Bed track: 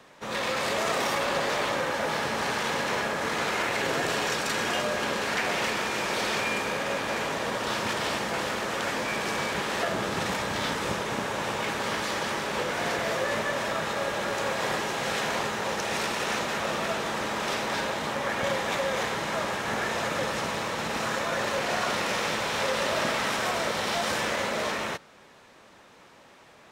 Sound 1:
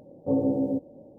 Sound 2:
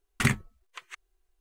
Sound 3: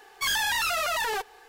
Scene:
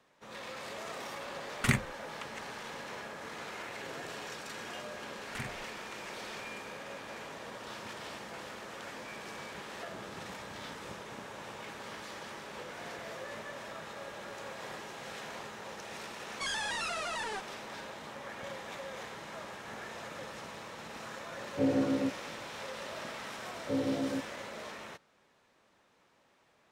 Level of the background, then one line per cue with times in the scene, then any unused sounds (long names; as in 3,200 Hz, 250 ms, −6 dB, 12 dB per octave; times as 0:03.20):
bed track −15 dB
0:01.44: mix in 2 −3.5 dB
0:05.15: mix in 2 −4 dB + downward compressor 2 to 1, threshold −44 dBFS
0:16.19: mix in 3 −9.5 dB + downsampling to 22,050 Hz
0:21.31: mix in 1 −4.5 dB
0:23.42: mix in 1 −8 dB